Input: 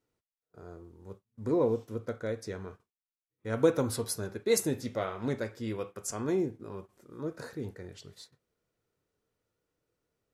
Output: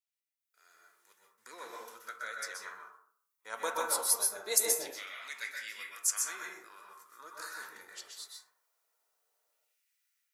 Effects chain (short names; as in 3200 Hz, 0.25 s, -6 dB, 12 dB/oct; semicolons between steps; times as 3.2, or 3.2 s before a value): LFO high-pass saw down 0.21 Hz 680–2400 Hz; AGC gain up to 15 dB; pre-emphasis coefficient 0.8; plate-style reverb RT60 0.59 s, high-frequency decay 0.35×, pre-delay 0.115 s, DRR -1.5 dB; gain -7 dB